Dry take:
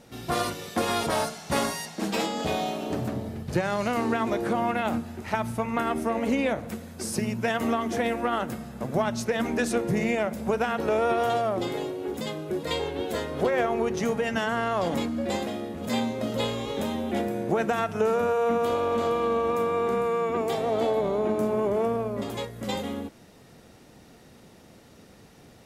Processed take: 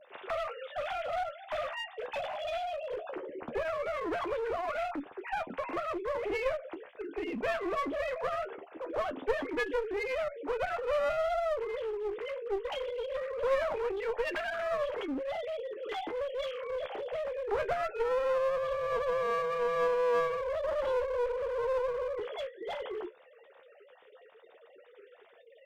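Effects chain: sine-wave speech; in parallel at +2 dB: compressor 6:1, threshold -40 dBFS, peak gain reduction 22.5 dB; on the sum: flange 0.2 Hz, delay 9.9 ms, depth 5 ms, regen +44%; one-sided clip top -32 dBFS; gain -2 dB

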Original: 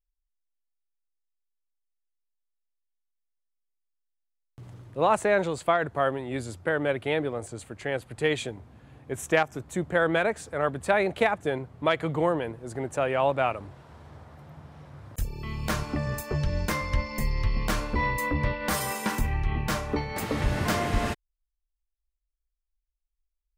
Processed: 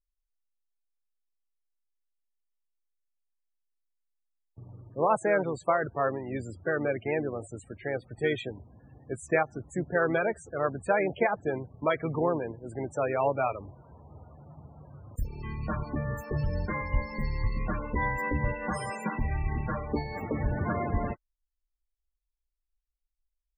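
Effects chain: harmoniser -4 st -10 dB; loudest bins only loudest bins 32; gain -2.5 dB

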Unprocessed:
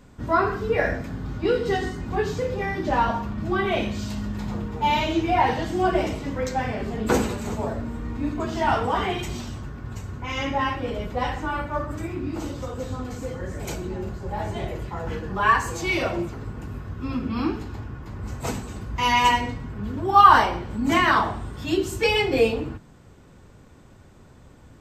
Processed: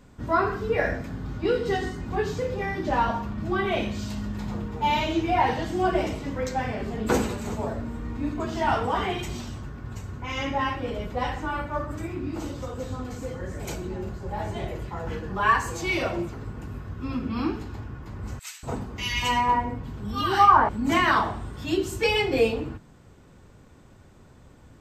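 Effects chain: 18.39–20.69 bands offset in time highs, lows 0.24 s, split 1700 Hz; gain -2 dB

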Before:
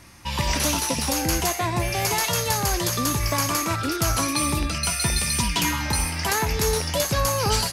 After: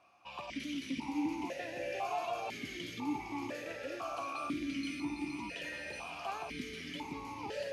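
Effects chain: limiter -15 dBFS, peak gain reduction 6 dB; on a send: diffused feedback echo 0.553 s, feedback 44%, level -3.5 dB; on the sum: vowel sequencer 2 Hz; gain -2.5 dB

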